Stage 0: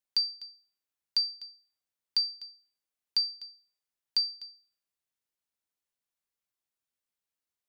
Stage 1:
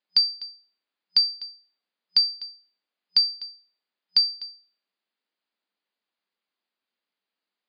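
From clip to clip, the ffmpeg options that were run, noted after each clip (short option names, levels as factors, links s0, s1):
-af "afftfilt=real='re*between(b*sr/4096,180,5000)':imag='im*between(b*sr/4096,180,5000)':win_size=4096:overlap=0.75,volume=2.51"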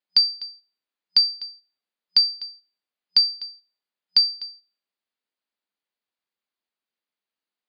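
-af "agate=range=0.447:threshold=0.00398:ratio=16:detection=peak,volume=1.33"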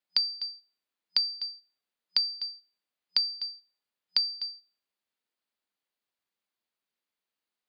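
-filter_complex "[0:a]acrossover=split=270[s0][s1];[s1]acompressor=threshold=0.0562:ratio=4[s2];[s0][s2]amix=inputs=2:normalize=0"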